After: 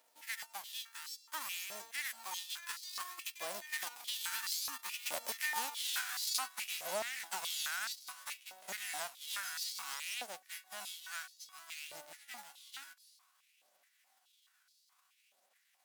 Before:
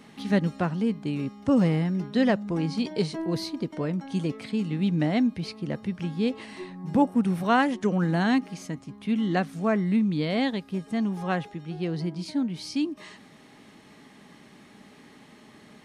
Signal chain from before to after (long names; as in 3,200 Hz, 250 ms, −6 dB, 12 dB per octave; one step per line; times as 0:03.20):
spectral envelope flattened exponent 0.1
source passing by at 0:05.86, 34 m/s, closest 3.8 metres
phase shifter 0.58 Hz, delay 1.3 ms, feedback 25%
downward compressor 10 to 1, threshold −49 dBFS, peak gain reduction 21 dB
high-pass on a step sequencer 4.7 Hz 590–4,500 Hz
level +13 dB